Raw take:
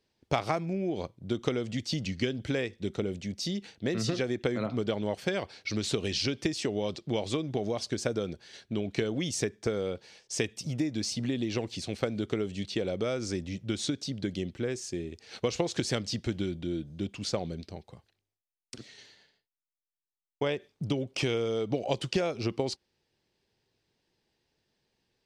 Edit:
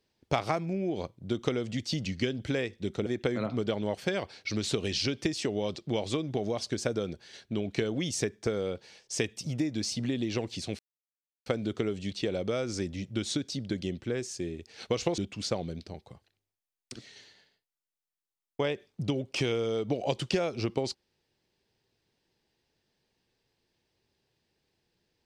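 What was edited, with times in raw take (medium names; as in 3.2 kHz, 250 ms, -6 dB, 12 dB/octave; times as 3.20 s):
3.06–4.26 s: delete
11.99 s: insert silence 0.67 s
15.71–17.00 s: delete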